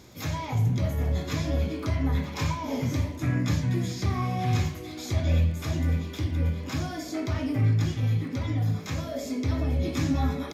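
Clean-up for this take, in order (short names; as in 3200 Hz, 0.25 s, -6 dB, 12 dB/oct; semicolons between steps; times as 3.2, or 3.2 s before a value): de-click; inverse comb 0.334 s -23.5 dB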